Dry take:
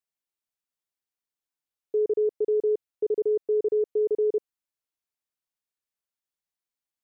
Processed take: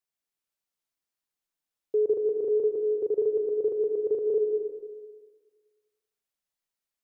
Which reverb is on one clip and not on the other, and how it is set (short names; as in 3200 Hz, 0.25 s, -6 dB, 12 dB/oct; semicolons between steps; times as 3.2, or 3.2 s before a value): digital reverb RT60 1.5 s, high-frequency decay 0.95×, pre-delay 0.105 s, DRR 2 dB